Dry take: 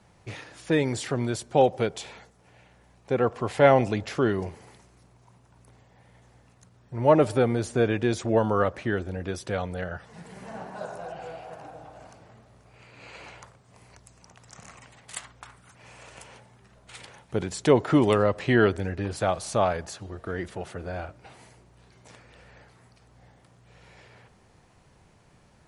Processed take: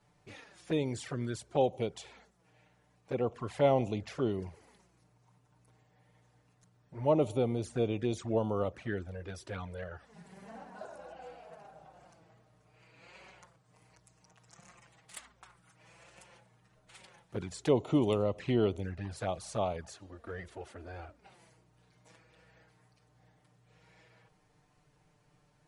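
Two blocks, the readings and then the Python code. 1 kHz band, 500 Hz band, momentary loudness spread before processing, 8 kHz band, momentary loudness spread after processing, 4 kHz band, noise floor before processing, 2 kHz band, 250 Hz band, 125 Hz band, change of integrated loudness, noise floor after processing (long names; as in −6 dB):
−10.5 dB, −8.5 dB, 21 LU, −10.0 dB, 21 LU, −8.5 dB, −59 dBFS, −14.5 dB, −7.5 dB, −7.5 dB, −8.0 dB, −69 dBFS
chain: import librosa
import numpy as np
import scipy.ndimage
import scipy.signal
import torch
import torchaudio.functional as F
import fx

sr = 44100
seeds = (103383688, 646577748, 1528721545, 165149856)

y = fx.env_flanger(x, sr, rest_ms=7.1, full_db=-20.5)
y = F.gain(torch.from_numpy(y), -7.0).numpy()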